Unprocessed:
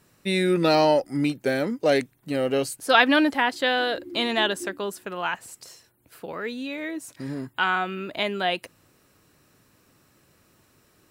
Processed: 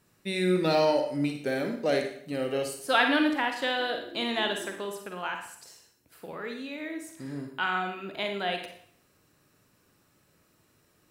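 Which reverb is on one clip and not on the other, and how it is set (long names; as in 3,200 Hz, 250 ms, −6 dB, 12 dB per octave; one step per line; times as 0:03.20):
four-comb reverb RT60 0.6 s, DRR 4 dB
level −6.5 dB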